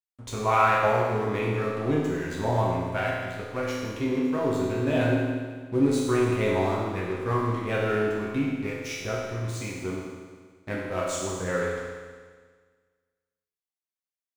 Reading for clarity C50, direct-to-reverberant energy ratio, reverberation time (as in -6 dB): -0.5 dB, -6.0 dB, 1.6 s